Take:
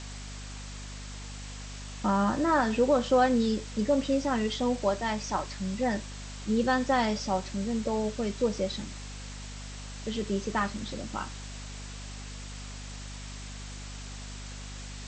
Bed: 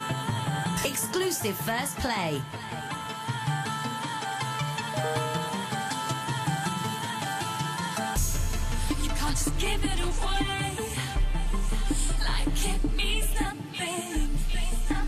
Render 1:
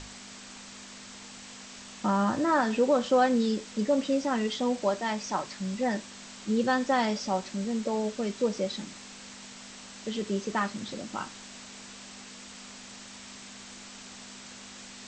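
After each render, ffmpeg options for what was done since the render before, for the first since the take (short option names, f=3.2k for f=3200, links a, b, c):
-af "bandreject=f=50:t=h:w=6,bandreject=f=100:t=h:w=6,bandreject=f=150:t=h:w=6"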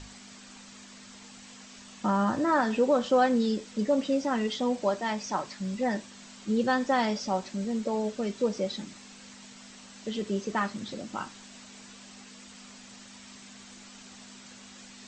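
-af "afftdn=nr=6:nf=-47"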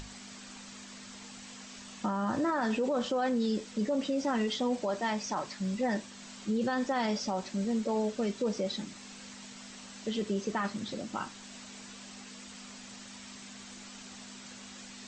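-af "alimiter=limit=-23dB:level=0:latency=1:release=22,acompressor=mode=upward:threshold=-43dB:ratio=2.5"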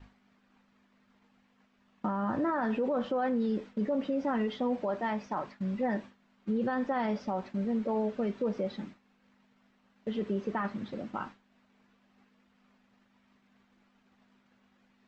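-af "lowpass=2k,agate=range=-33dB:threshold=-39dB:ratio=3:detection=peak"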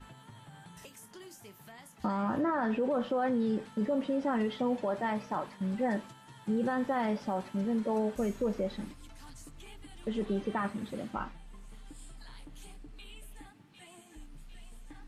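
-filter_complex "[1:a]volume=-23dB[a];[0:a][a]amix=inputs=2:normalize=0"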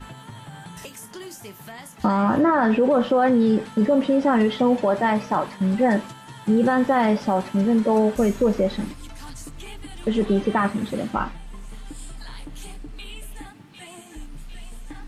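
-af "volume=12dB"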